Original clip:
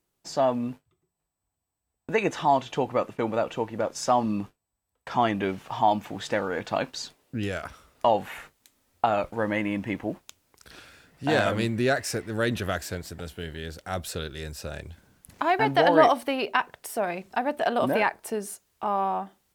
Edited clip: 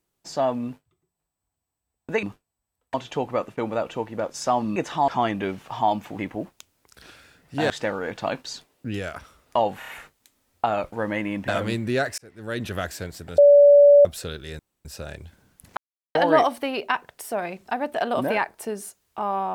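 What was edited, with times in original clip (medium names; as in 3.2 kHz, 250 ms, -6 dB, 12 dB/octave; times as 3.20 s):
2.23–2.55 s: swap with 4.37–5.08 s
8.28 s: stutter 0.03 s, 4 plays
9.88–11.39 s: move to 6.19 s
12.09–12.66 s: fade in
13.29–13.96 s: bleep 575 Hz -8.5 dBFS
14.50 s: insert room tone 0.26 s
15.42–15.80 s: mute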